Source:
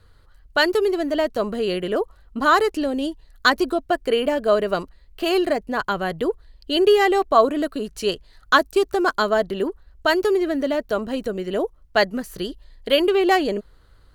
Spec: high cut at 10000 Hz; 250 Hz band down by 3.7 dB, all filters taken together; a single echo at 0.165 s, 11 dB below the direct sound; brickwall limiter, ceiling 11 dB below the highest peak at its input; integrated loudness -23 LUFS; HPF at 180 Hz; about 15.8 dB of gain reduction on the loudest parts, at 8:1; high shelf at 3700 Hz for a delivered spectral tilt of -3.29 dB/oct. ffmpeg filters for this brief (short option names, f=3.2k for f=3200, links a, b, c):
-af "highpass=180,lowpass=10k,equalizer=f=250:t=o:g=-5,highshelf=f=3.7k:g=6,acompressor=threshold=-26dB:ratio=8,alimiter=limit=-20.5dB:level=0:latency=1,aecho=1:1:165:0.282,volume=9dB"